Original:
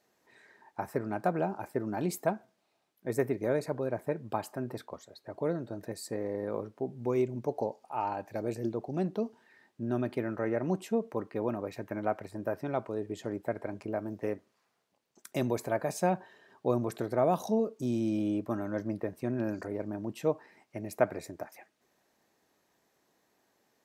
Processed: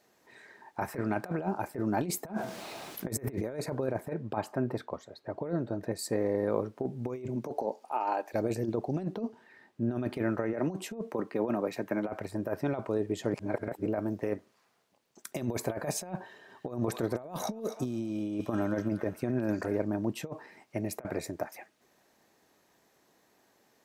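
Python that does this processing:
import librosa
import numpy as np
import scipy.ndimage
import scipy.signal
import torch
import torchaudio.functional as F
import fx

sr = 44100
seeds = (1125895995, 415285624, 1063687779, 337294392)

y = fx.peak_eq(x, sr, hz=2300.0, db=5.0, octaves=1.5, at=(0.82, 1.37))
y = fx.env_flatten(y, sr, amount_pct=50, at=(2.26, 3.42), fade=0.02)
y = fx.lowpass(y, sr, hz=2700.0, slope=6, at=(4.13, 5.99))
y = fx.highpass(y, sr, hz=fx.line((7.27, 120.0), (8.33, 370.0)), slope=24, at=(7.27, 8.33), fade=0.02)
y = fx.high_shelf(y, sr, hz=3500.0, db=-6.5, at=(9.14, 9.96))
y = fx.highpass(y, sr, hz=140.0, slope=24, at=(10.53, 12.09))
y = fx.echo_wet_highpass(y, sr, ms=250, feedback_pct=45, hz=1400.0, wet_db=-9.0, at=(16.19, 19.79))
y = fx.edit(y, sr, fx.reverse_span(start_s=13.34, length_s=0.52), tone=tone)
y = fx.over_compress(y, sr, threshold_db=-33.0, ratio=-0.5)
y = F.gain(torch.from_numpy(y), 2.5).numpy()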